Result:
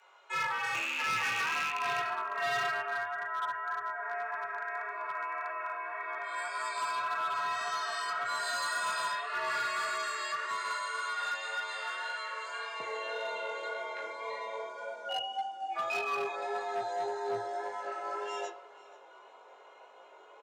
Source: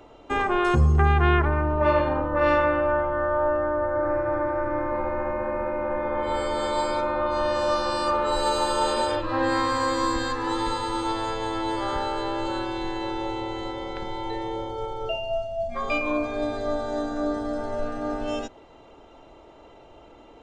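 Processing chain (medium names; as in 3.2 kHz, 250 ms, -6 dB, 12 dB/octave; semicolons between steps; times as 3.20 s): rattle on loud lows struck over -23 dBFS, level -15 dBFS; peaking EQ 6.4 kHz -4 dB 2.8 oct; reverberation RT60 0.40 s, pre-delay 3 ms, DRR -1 dB; chorus 1.8 Hz, delay 19 ms, depth 3.3 ms; high-pass 1 kHz 12 dB/octave, from 12.80 s 460 Hz; delay 482 ms -21 dB; overload inside the chain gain 28.5 dB; frequency shift +110 Hz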